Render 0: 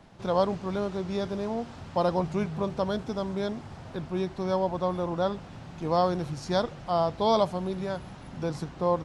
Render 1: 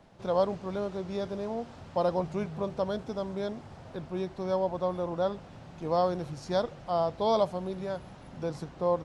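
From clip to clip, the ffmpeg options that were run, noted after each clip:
-af "equalizer=f=550:w=1.6:g=4.5,volume=-5dB"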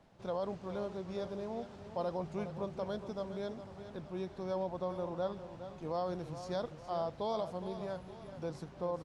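-filter_complex "[0:a]alimiter=limit=-21dB:level=0:latency=1:release=46,asplit=2[a][b];[b]aecho=0:1:414|879:0.282|0.126[c];[a][c]amix=inputs=2:normalize=0,volume=-6.5dB"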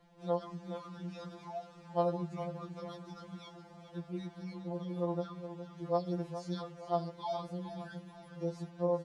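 -af "afftfilt=real='re*2.83*eq(mod(b,8),0)':imag='im*2.83*eq(mod(b,8),0)':win_size=2048:overlap=0.75,volume=1.5dB"

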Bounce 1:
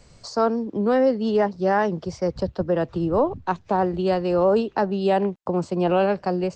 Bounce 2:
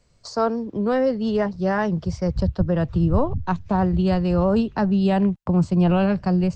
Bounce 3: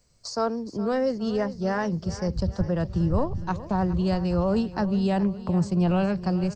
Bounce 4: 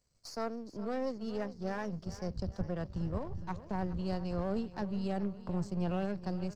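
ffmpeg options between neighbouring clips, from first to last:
-af "agate=range=-11dB:threshold=-40dB:ratio=16:detection=peak,bandreject=f=810:w=17,asubboost=boost=9.5:cutoff=140"
-af "aexciter=amount=3.2:drive=2.3:freq=4.7k,aecho=1:1:415|830|1245|1660|2075:0.178|0.096|0.0519|0.028|0.0151,volume=-4.5dB"
-af "aeval=exprs='if(lt(val(0),0),0.447*val(0),val(0))':c=same,volume=-9dB"

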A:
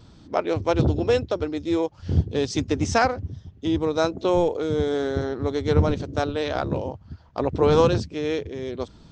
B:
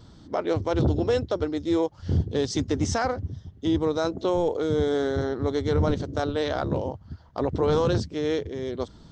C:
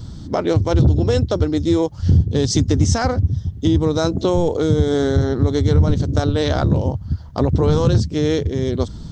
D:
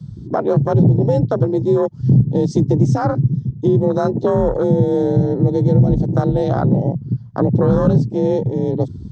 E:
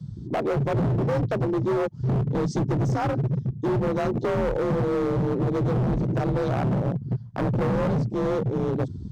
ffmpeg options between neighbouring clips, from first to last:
-af "equalizer=f=2.5k:t=o:w=0.2:g=-9.5,alimiter=limit=-14.5dB:level=0:latency=1:release=13"
-af "bass=f=250:g=12,treble=f=4k:g=8,acompressor=threshold=-20dB:ratio=2.5,volume=6.5dB"
-af "afreqshift=41,afwtdn=0.0891,volume=1.5dB"
-af "asoftclip=type=hard:threshold=-17dB,volume=-4dB"

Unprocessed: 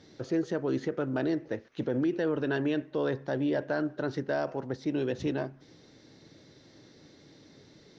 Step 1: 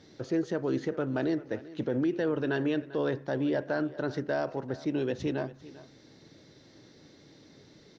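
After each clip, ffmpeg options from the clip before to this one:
-af "aecho=1:1:394:0.126"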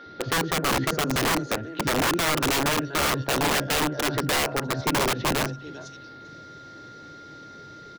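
-filter_complex "[0:a]acrossover=split=230|4700[a][b][c];[a]adelay=60[d];[c]adelay=660[e];[d][b][e]amix=inputs=3:normalize=0,aeval=exprs='(mod(22.4*val(0)+1,2)-1)/22.4':c=same,aeval=exprs='val(0)+0.00251*sin(2*PI*1400*n/s)':c=same,volume=9dB"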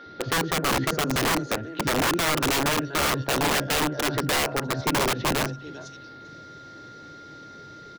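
-af anull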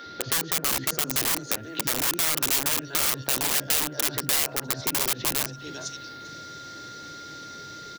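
-af "acompressor=threshold=-32dB:ratio=6,crystalizer=i=4.5:c=0"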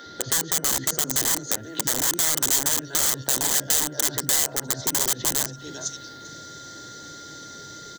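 -af "superequalizer=10b=0.708:12b=0.355:15b=2.24,volume=1dB"

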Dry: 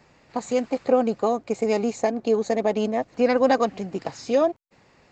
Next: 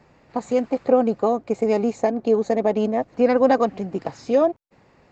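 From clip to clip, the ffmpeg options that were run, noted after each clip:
-af "highshelf=f=2.1k:g=-9.5,volume=3dB"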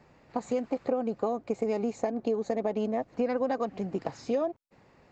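-af "acompressor=threshold=-21dB:ratio=6,volume=-4dB"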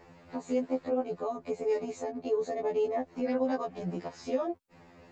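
-af "alimiter=level_in=1dB:limit=-24dB:level=0:latency=1:release=411,volume=-1dB,afftfilt=real='re*2*eq(mod(b,4),0)':imag='im*2*eq(mod(b,4),0)':win_size=2048:overlap=0.75,volume=6.5dB"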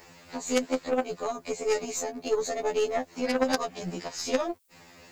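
-af "crystalizer=i=8.5:c=0,aeval=exprs='0.178*(cos(1*acos(clip(val(0)/0.178,-1,1)))-cos(1*PI/2))+0.0794*(cos(2*acos(clip(val(0)/0.178,-1,1)))-cos(2*PI/2))+0.0316*(cos(3*acos(clip(val(0)/0.178,-1,1)))-cos(3*PI/2))+0.0447*(cos(4*acos(clip(val(0)/0.178,-1,1)))-cos(4*PI/2))+0.00794*(cos(6*acos(clip(val(0)/0.178,-1,1)))-cos(6*PI/2))':c=same,volume=5.5dB"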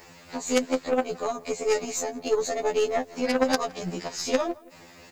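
-filter_complex "[0:a]asplit=2[a][b];[b]adelay=166,lowpass=f=2.6k:p=1,volume=-22dB,asplit=2[c][d];[d]adelay=166,lowpass=f=2.6k:p=1,volume=0.39,asplit=2[e][f];[f]adelay=166,lowpass=f=2.6k:p=1,volume=0.39[g];[a][c][e][g]amix=inputs=4:normalize=0,volume=2.5dB"

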